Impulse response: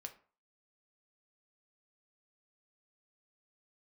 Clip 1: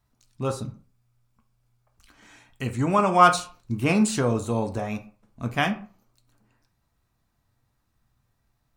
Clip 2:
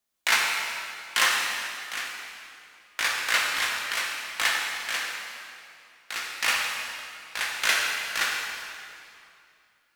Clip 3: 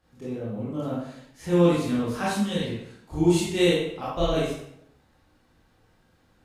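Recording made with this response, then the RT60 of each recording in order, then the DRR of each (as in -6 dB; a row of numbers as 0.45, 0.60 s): 1; 0.40, 2.6, 0.70 s; 5.0, -3.0, -8.5 dB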